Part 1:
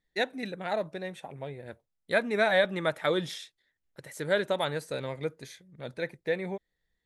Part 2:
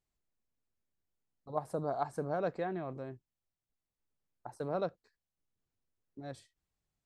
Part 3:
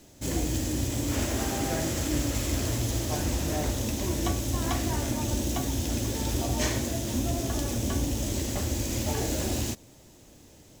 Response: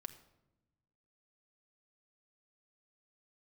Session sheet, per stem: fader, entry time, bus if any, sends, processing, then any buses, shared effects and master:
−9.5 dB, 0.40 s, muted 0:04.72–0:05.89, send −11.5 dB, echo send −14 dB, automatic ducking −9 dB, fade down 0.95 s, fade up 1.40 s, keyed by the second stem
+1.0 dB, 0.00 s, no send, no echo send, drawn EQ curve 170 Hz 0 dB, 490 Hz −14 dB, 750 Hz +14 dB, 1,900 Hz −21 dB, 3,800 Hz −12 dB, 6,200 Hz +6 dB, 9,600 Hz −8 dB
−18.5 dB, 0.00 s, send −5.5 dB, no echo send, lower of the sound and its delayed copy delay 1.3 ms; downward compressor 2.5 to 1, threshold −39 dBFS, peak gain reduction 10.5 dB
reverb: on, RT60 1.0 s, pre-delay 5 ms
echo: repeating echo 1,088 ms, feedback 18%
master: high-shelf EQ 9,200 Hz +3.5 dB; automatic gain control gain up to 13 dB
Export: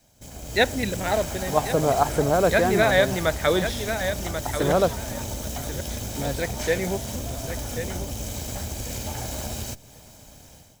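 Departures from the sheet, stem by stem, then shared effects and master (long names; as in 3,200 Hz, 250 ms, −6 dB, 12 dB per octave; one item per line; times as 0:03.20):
stem 1 −9.5 dB → −2.5 dB
stem 2: missing drawn EQ curve 170 Hz 0 dB, 490 Hz −14 dB, 750 Hz +14 dB, 1,900 Hz −21 dB, 3,800 Hz −12 dB, 6,200 Hz +6 dB, 9,600 Hz −8 dB
stem 3 −18.5 dB → −8.5 dB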